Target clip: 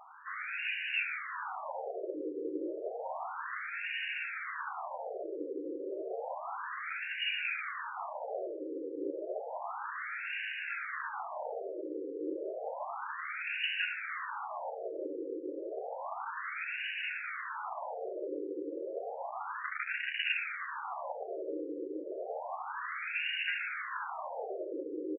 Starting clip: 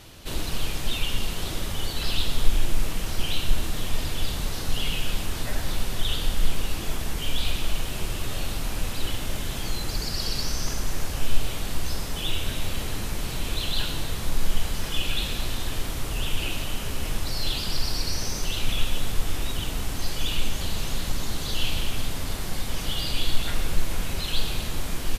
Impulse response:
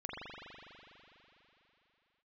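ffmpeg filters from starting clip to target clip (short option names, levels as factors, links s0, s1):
-filter_complex "[0:a]asettb=1/sr,asplit=3[s0][s1][s2];[s0]atrim=end=19.624[s3];[s1]atrim=start=19.62:end=20.33,asetpts=PTS-STARTPTS,afade=t=in:d=0.004:c=qsin,afade=t=out:st=0.706:d=0.004:c=qsin,aeval=exprs='0.237*(cos(1*acos(clip(val(0)/0.237,-1,1)))-cos(1*PI/2))+0.0422*(cos(8*acos(clip(val(0)/0.237,-1,1)))-cos(8*PI/2))':c=same[s4];[s2]atrim=start=20.326[s5];[s3][s4]acrossfade=d=0.004:c1=hsin:c2=qsin[s6];[s6][s5]acrossfade=d=0.004:c1=qsin:c2=hsin,asplit=2[s7][s8];[s8]adelay=13,volume=0.398[s9];[s7][s9]amix=inputs=2:normalize=0,afftfilt=real='re*between(b*sr/1024,380*pow(2100/380,0.5+0.5*sin(2*PI*0.31*pts/sr))/1.41,380*pow(2100/380,0.5+0.5*sin(2*PI*0.31*pts/sr))*1.41)':imag='im*between(b*sr/1024,380*pow(2100/380,0.5+0.5*sin(2*PI*0.31*pts/sr))/1.41,380*pow(2100/380,0.5+0.5*sin(2*PI*0.31*pts/sr))*1.41)':win_size=1024:overlap=0.75,volume=1.78"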